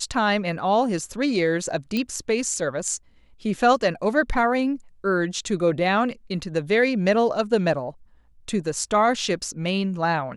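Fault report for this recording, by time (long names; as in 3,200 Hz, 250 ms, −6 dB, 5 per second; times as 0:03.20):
0:01.97: click −13 dBFS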